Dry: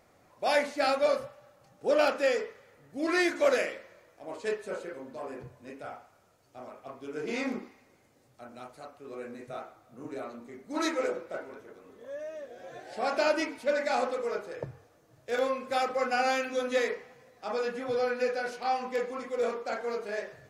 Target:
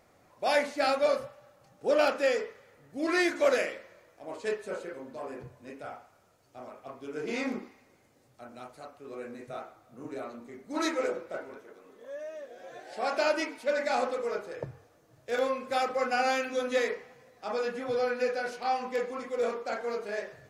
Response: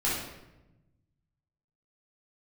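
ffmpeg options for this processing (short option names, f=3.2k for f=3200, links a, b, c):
-filter_complex "[0:a]asettb=1/sr,asplit=3[a][b][c];[a]atrim=end=11.584[d];[b]atrim=start=11.58:end=13.78,asetpts=PTS-STARTPTS,afade=t=in:d=0.004:c=qsin,afade=t=out:st=2.196:d=0.004:c=qsin,equalizer=f=63:t=o:w=2.4:g=-14[e];[c]atrim=start=13.776[f];[d][e]acrossfade=d=0.004:c1=hsin:c2=qsin[g];[g][f]acrossfade=d=0.004:c1=qsin:c2=hsin"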